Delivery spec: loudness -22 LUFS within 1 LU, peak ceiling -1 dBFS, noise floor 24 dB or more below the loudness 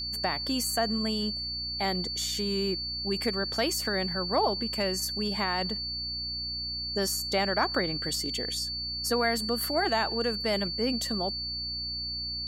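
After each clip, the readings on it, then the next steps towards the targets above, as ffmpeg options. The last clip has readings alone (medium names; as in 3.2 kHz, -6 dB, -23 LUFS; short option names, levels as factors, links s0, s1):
hum 60 Hz; highest harmonic 300 Hz; hum level -42 dBFS; steady tone 4.5 kHz; tone level -32 dBFS; loudness -28.5 LUFS; peak level -13.0 dBFS; loudness target -22.0 LUFS
-> -af "bandreject=f=60:t=h:w=4,bandreject=f=120:t=h:w=4,bandreject=f=180:t=h:w=4,bandreject=f=240:t=h:w=4,bandreject=f=300:t=h:w=4"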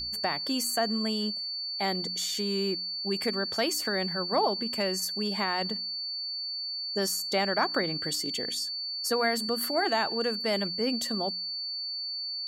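hum not found; steady tone 4.5 kHz; tone level -32 dBFS
-> -af "bandreject=f=4500:w=30"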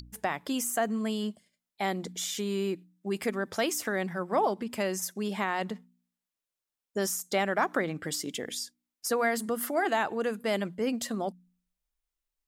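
steady tone not found; loudness -31.0 LUFS; peak level -13.0 dBFS; loudness target -22.0 LUFS
-> -af "volume=2.82"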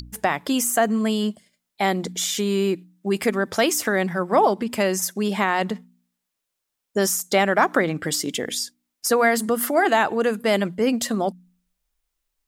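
loudness -22.0 LUFS; peak level -4.0 dBFS; noise floor -81 dBFS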